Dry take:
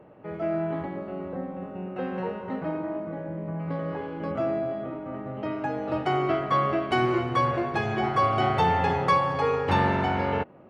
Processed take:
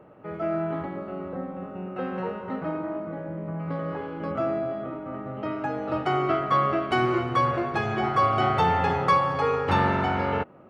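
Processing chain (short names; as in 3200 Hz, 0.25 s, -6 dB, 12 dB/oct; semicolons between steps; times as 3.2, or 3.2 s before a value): bell 1300 Hz +8 dB 0.2 oct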